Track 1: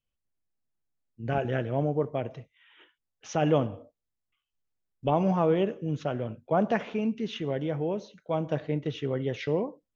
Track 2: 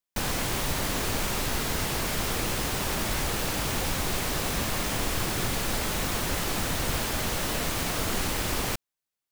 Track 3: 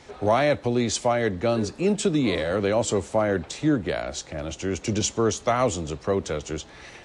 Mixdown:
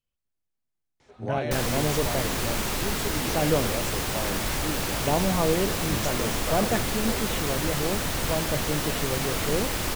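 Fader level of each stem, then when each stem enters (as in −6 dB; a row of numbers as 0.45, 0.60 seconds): −0.5, +0.5, −12.0 decibels; 0.00, 1.35, 1.00 seconds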